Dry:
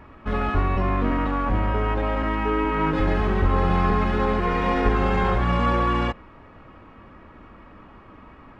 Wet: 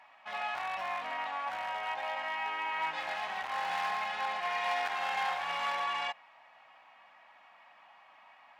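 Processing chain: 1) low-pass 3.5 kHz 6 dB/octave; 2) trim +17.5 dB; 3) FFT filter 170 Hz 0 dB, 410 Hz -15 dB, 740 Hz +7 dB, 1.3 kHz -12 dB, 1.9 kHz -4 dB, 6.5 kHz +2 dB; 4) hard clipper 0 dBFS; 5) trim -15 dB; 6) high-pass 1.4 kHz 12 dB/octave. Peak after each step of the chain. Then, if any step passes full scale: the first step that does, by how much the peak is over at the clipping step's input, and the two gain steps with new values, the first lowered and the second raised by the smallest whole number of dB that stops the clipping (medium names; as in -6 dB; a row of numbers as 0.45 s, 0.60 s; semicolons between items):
-7.0 dBFS, +10.5 dBFS, +8.5 dBFS, 0.0 dBFS, -15.0 dBFS, -21.5 dBFS; step 2, 8.5 dB; step 2 +8.5 dB, step 5 -6 dB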